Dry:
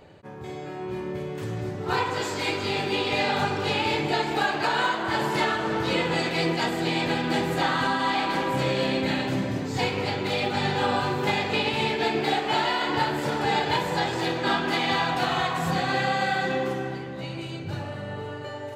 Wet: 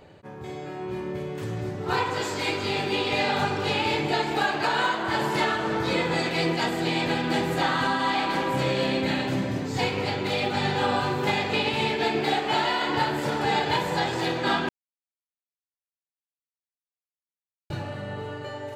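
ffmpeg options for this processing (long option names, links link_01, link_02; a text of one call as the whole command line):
ffmpeg -i in.wav -filter_complex "[0:a]asettb=1/sr,asplit=3[link_01][link_02][link_03];[link_01]atrim=end=5.764[link_04];[link_02]atrim=start=5.76:end=6.26,asetpts=PTS-STARTPTS,afade=type=in:duration=0.004:curve=qsin,afade=type=out:start_time=0.496:duration=0.004:curve=qsin,bandreject=frequency=2900:width=10[link_05];[link_03]atrim=start=6.256[link_06];[link_04][link_05]acrossfade=duration=0.004:curve1=hsin:curve2=qsin[link_07];[link_07][link_06]acrossfade=duration=0.004:curve1=qsin:curve2=hsin,asplit=3[link_08][link_09][link_10];[link_08]atrim=end=14.69,asetpts=PTS-STARTPTS,afade=type=out:start_time=14.686:duration=0.004:curve=hsin[link_11];[link_09]atrim=start=14.69:end=17.7,asetpts=PTS-STARTPTS,volume=0[link_12];[link_10]atrim=start=17.7,asetpts=PTS-STARTPTS,afade=type=in:duration=0.004:curve=hsin[link_13];[link_11][link_12][link_13]concat=n=3:v=0:a=1" out.wav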